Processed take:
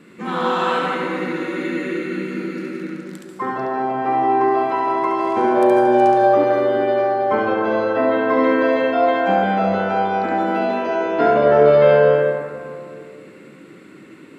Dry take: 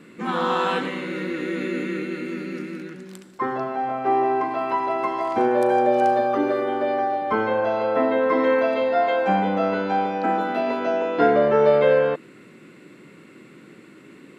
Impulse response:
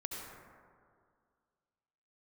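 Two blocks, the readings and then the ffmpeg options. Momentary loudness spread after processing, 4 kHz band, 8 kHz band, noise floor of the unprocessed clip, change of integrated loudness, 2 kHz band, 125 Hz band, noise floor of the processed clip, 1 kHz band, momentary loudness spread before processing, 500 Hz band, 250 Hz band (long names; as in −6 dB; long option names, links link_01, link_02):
13 LU, +2.5 dB, can't be measured, −48 dBFS, +4.0 dB, +4.0 dB, +5.0 dB, −42 dBFS, +4.0 dB, 11 LU, +4.5 dB, +4.5 dB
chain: -filter_complex "[0:a]asplit=2[link_01][link_02];[1:a]atrim=start_sample=2205,adelay=70[link_03];[link_02][link_03]afir=irnorm=-1:irlink=0,volume=0.5dB[link_04];[link_01][link_04]amix=inputs=2:normalize=0"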